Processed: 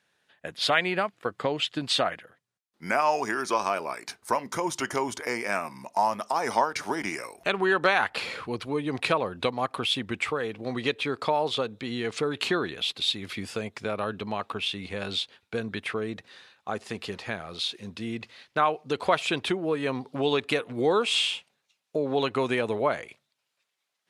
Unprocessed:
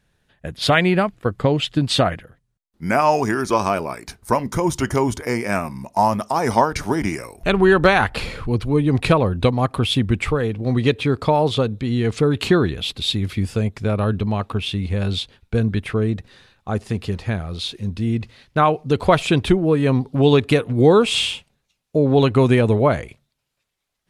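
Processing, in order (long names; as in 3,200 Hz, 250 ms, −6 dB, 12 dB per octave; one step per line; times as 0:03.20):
meter weighting curve A
in parallel at +2 dB: downward compressor, threshold −27 dBFS, peak gain reduction 16 dB
on the sum: level −8.5 dB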